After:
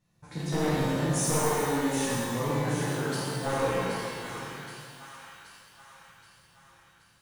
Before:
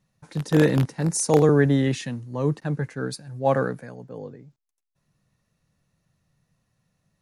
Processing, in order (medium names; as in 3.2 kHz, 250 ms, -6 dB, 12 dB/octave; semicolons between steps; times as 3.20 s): one-sided wavefolder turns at -16.5 dBFS; compression 4:1, threshold -28 dBFS, peak gain reduction 10.5 dB; 1.46–1.94 s: static phaser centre 650 Hz, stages 6; 3.90–4.32 s: power-law waveshaper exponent 3; on a send: two-band feedback delay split 910 Hz, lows 107 ms, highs 775 ms, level -7 dB; on the sum: pitch-shifted reverb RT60 1.8 s, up +12 st, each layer -8 dB, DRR -8.5 dB; trim -5.5 dB